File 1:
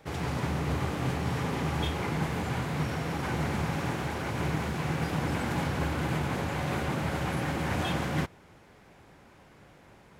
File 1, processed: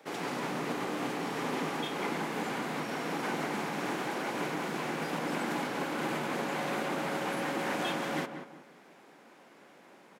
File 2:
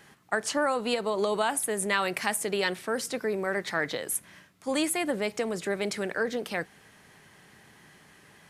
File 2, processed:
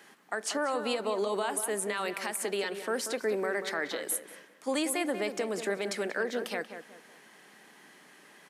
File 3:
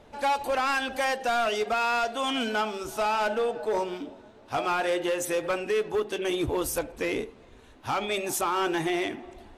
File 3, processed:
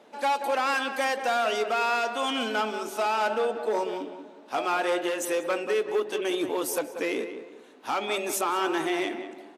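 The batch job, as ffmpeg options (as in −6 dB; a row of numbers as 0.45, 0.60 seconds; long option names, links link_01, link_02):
-filter_complex "[0:a]alimiter=limit=-20.5dB:level=0:latency=1:release=198,highpass=frequency=220:width=0.5412,highpass=frequency=220:width=1.3066,asplit=2[link_01][link_02];[link_02]adelay=186,lowpass=frequency=2000:poles=1,volume=-8.5dB,asplit=2[link_03][link_04];[link_04]adelay=186,lowpass=frequency=2000:poles=1,volume=0.35,asplit=2[link_05][link_06];[link_06]adelay=186,lowpass=frequency=2000:poles=1,volume=0.35,asplit=2[link_07][link_08];[link_08]adelay=186,lowpass=frequency=2000:poles=1,volume=0.35[link_09];[link_03][link_05][link_07][link_09]amix=inputs=4:normalize=0[link_10];[link_01][link_10]amix=inputs=2:normalize=0"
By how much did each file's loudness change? −3.0, −3.0, 0.0 LU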